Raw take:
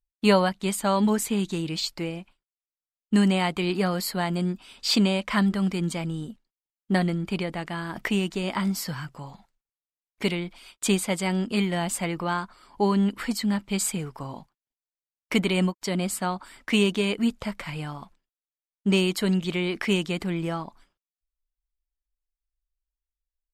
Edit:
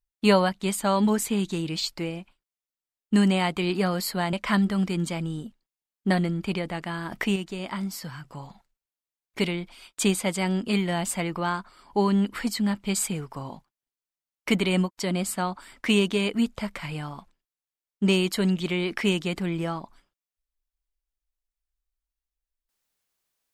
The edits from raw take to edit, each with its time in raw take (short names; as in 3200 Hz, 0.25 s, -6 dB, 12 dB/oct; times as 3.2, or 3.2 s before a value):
4.33–5.17 cut
8.2–9.09 gain -5 dB